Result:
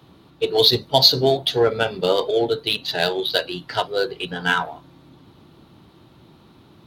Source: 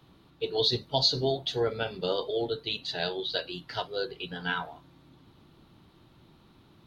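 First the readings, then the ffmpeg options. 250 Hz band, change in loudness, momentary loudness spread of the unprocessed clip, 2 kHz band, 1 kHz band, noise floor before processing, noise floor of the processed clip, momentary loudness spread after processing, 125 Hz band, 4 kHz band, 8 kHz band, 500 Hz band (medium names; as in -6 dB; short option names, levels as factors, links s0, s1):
+9.5 dB, +10.5 dB, 10 LU, +11.0 dB, +11.0 dB, -60 dBFS, -52 dBFS, 11 LU, +7.5 dB, +10.5 dB, no reading, +10.5 dB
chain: -filter_complex "[0:a]highpass=55,asplit=2[s0][s1];[s1]adynamicsmooth=sensitivity=6.5:basefreq=1100,volume=0.708[s2];[s0][s2]amix=inputs=2:normalize=0,lowshelf=f=330:g=-5,volume=2.37"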